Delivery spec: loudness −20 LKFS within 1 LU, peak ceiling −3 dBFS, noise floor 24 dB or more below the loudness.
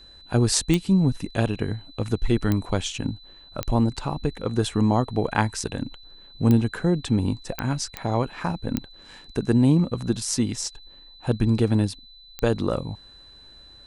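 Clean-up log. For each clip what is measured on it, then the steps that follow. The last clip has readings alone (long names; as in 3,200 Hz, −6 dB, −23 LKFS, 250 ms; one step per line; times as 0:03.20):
number of clicks 8; interfering tone 4,000 Hz; level of the tone −47 dBFS; integrated loudness −24.5 LKFS; sample peak −3.0 dBFS; target loudness −20.0 LKFS
→ click removal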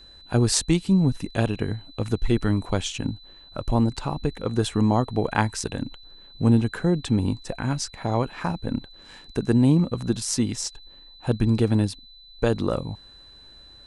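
number of clicks 0; interfering tone 4,000 Hz; level of the tone −47 dBFS
→ notch filter 4,000 Hz, Q 30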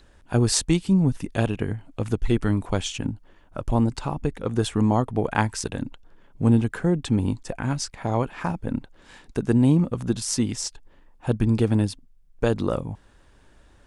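interfering tone none found; integrated loudness −24.5 LKFS; sample peak −3.5 dBFS; target loudness −20.0 LKFS
→ level +4.5 dB
brickwall limiter −3 dBFS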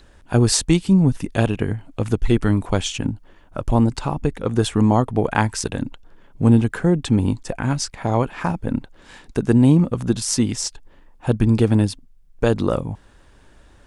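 integrated loudness −20.0 LKFS; sample peak −3.0 dBFS; background noise floor −51 dBFS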